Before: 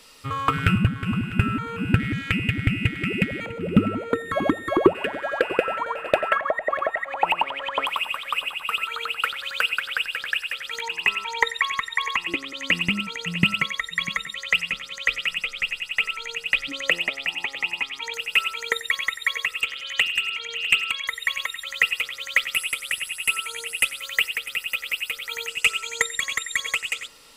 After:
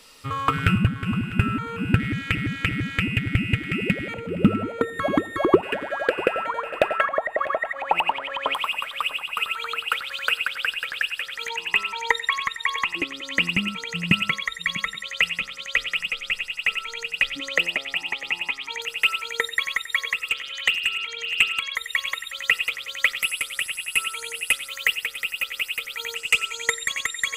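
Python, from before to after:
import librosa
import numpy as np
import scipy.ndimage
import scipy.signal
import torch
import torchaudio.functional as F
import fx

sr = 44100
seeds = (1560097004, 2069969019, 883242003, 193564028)

y = fx.edit(x, sr, fx.repeat(start_s=2.01, length_s=0.34, count=3), tone=tone)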